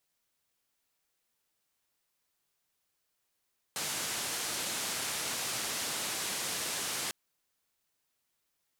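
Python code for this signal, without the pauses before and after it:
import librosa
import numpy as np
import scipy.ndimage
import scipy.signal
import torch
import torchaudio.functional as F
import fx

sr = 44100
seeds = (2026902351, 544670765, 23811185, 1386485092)

y = fx.band_noise(sr, seeds[0], length_s=3.35, low_hz=110.0, high_hz=10000.0, level_db=-35.5)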